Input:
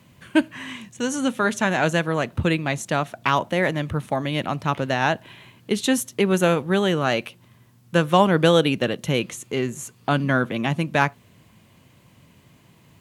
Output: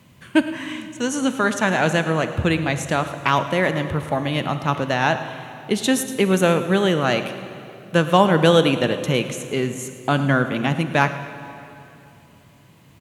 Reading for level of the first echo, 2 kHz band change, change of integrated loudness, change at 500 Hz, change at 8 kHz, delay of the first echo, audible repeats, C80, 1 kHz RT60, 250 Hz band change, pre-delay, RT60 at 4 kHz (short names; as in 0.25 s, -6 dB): -16.5 dB, +2.0 dB, +2.0 dB, +2.0 dB, +2.0 dB, 0.108 s, 1, 10.0 dB, 2.8 s, +2.0 dB, 32 ms, 2.3 s